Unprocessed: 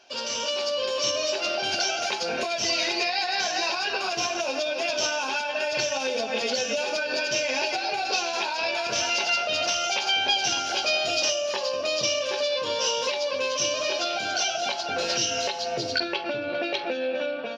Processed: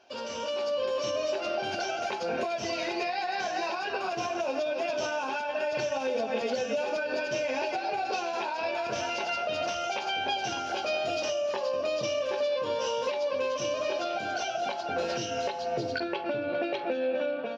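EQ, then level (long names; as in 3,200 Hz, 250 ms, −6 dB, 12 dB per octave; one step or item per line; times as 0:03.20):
dynamic equaliser 4,700 Hz, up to −4 dB, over −36 dBFS, Q 0.85
high-shelf EQ 2,100 Hz −11.5 dB
0.0 dB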